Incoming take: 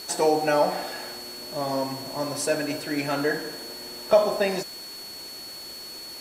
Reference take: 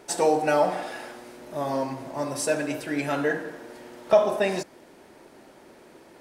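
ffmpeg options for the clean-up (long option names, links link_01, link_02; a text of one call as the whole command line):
ffmpeg -i in.wav -af "adeclick=threshold=4,bandreject=frequency=4400:width=30,afwtdn=0.0063" out.wav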